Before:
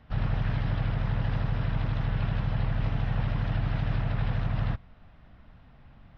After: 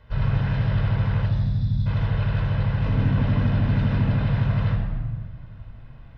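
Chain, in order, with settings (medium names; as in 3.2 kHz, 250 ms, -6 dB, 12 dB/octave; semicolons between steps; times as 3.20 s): 1.26–1.86 s: time-frequency box 260–3300 Hz -24 dB; 2.85–4.09 s: peaking EQ 250 Hz +14 dB 0.74 oct; reverberation RT60 1.5 s, pre-delay 16 ms, DRR 2 dB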